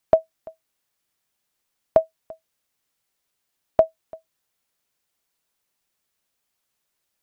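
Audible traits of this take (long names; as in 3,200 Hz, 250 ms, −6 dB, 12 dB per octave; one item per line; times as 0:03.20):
AAC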